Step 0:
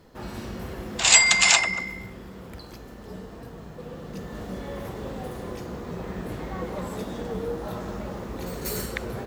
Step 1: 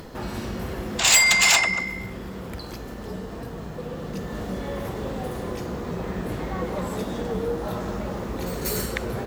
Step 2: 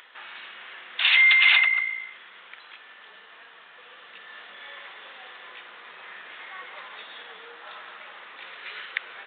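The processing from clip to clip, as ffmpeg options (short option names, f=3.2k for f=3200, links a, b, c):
-filter_complex "[0:a]asplit=2[a][b];[b]acompressor=mode=upward:threshold=-29dB:ratio=2.5,volume=0.5dB[c];[a][c]amix=inputs=2:normalize=0,asoftclip=type=tanh:threshold=-8.5dB,volume=-2.5dB"
-af "asuperpass=centerf=3100:order=4:qfactor=0.74,aresample=8000,aresample=44100,volume=3dB"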